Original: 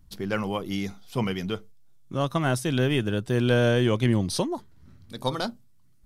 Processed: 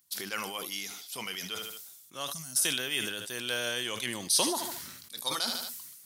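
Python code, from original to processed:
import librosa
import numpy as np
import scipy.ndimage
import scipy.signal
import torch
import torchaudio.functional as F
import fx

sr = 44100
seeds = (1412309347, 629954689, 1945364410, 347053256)

p1 = scipy.signal.sosfilt(scipy.signal.butter(2, 90.0, 'highpass', fs=sr, output='sos'), x)
p2 = np.diff(p1, prepend=0.0)
p3 = p2 + fx.echo_feedback(p2, sr, ms=75, feedback_pct=36, wet_db=-19.0, dry=0)
p4 = fx.spec_box(p3, sr, start_s=2.33, length_s=0.23, low_hz=260.0, high_hz=4100.0, gain_db=-23)
p5 = fx.sustainer(p4, sr, db_per_s=41.0)
y = p5 * librosa.db_to_amplitude(7.5)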